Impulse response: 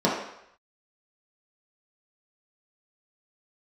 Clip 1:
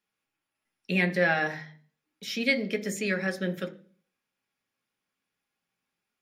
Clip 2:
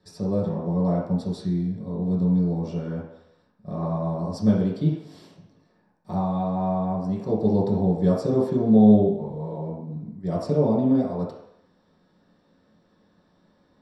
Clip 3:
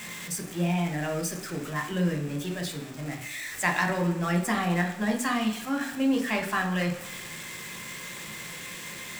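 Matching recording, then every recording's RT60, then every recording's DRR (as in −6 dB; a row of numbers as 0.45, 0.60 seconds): 2; 0.40, 0.75, 1.0 seconds; 6.0, −6.5, 3.5 decibels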